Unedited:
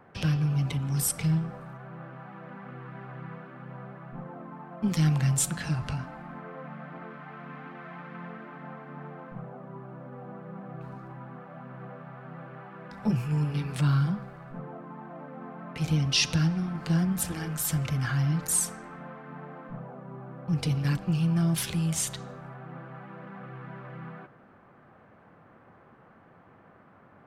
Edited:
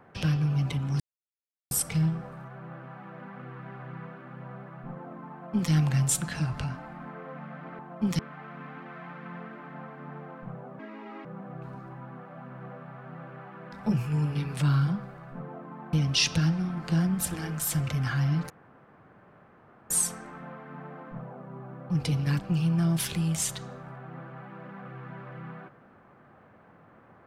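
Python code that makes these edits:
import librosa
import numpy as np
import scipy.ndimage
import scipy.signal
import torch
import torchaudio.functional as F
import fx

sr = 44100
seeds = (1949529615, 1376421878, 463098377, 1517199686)

y = fx.edit(x, sr, fx.insert_silence(at_s=1.0, length_s=0.71),
    fx.duplicate(start_s=4.6, length_s=0.4, to_s=7.08),
    fx.speed_span(start_s=9.68, length_s=0.76, speed=1.65),
    fx.cut(start_s=15.12, length_s=0.79),
    fx.insert_room_tone(at_s=18.48, length_s=1.4), tone=tone)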